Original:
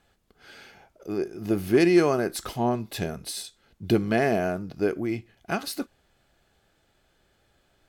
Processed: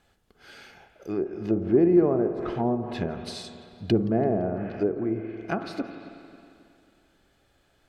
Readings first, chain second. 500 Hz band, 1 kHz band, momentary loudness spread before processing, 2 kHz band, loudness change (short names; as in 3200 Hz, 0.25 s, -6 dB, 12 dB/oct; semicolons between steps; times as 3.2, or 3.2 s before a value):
0.0 dB, -3.0 dB, 15 LU, -9.0 dB, 0.0 dB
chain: spring tank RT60 2.6 s, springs 45/54 ms, chirp 75 ms, DRR 8.5 dB; treble ducked by the level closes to 670 Hz, closed at -21.5 dBFS; warbling echo 0.169 s, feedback 53%, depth 207 cents, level -23.5 dB